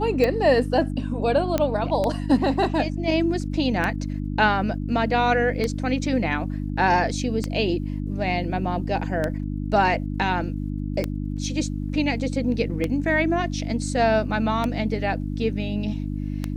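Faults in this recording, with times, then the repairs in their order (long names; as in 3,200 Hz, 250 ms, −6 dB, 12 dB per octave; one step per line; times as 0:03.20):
mains hum 50 Hz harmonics 6 −28 dBFS
scratch tick 33 1/3 rpm −11 dBFS
0:01.58: click −9 dBFS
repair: click removal
hum removal 50 Hz, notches 6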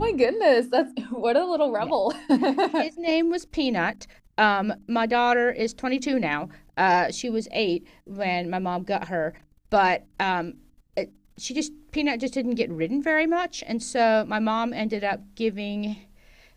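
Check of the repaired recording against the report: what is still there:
none of them is left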